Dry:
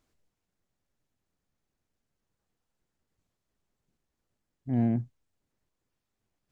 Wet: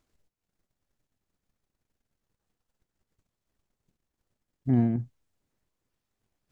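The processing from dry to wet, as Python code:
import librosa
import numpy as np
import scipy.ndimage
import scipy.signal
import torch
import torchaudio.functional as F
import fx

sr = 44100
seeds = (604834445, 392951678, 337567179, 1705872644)

y = fx.transient(x, sr, attack_db=9, sustain_db=fx.steps((0.0, -9.0), (4.97, 2.0)))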